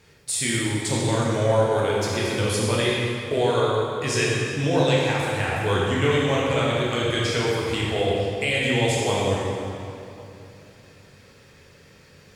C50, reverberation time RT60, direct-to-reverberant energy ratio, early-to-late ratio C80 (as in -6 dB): -2.0 dB, 2.8 s, -5.5 dB, -0.5 dB